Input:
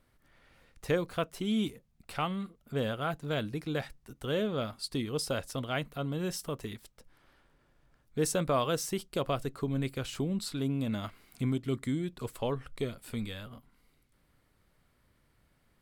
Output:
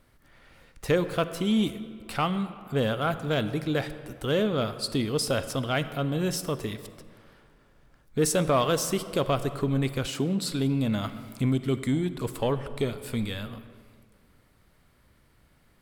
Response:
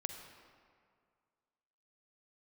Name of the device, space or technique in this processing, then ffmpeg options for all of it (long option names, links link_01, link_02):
saturated reverb return: -filter_complex "[0:a]asplit=2[link_01][link_02];[1:a]atrim=start_sample=2205[link_03];[link_02][link_03]afir=irnorm=-1:irlink=0,asoftclip=type=tanh:threshold=-27.5dB,volume=0.5dB[link_04];[link_01][link_04]amix=inputs=2:normalize=0,asettb=1/sr,asplit=3[link_05][link_06][link_07];[link_05]atrim=end=10.074[link_08];[link_06]atrim=start=10.07:end=10.5,asetpts=PTS-STARTPTS,afade=type=in:duration=0.004:curve=qsin,afade=type=out:start_time=0.426:duration=0.004:curve=qsin,highpass=140[link_09];[link_07]atrim=start=10.496[link_10];[link_08][link_09]acrossfade=duration=0.004:curve1=hsin:curve2=qsin[link_11];[link_11][link_10]acrossfade=duration=0.004:curve1=qsin:curve2=hsin,volume=1.5dB"